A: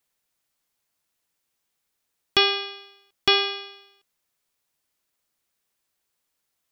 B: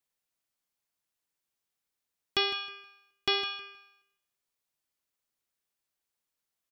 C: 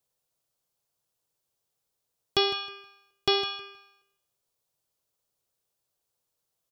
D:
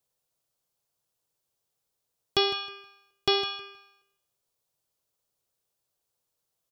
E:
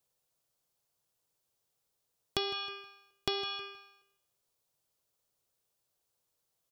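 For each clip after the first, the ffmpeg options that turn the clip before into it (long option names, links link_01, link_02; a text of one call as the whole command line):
ffmpeg -i in.wav -af "aecho=1:1:158|316|474:0.224|0.0493|0.0108,volume=-9dB" out.wav
ffmpeg -i in.wav -af "equalizer=frequency=125:width_type=o:width=1:gain=7,equalizer=frequency=250:width_type=o:width=1:gain=-5,equalizer=frequency=500:width_type=o:width=1:gain=6,equalizer=frequency=2000:width_type=o:width=1:gain=-8,volume=5dB" out.wav
ffmpeg -i in.wav -af anull out.wav
ffmpeg -i in.wav -af "acompressor=threshold=-31dB:ratio=5" out.wav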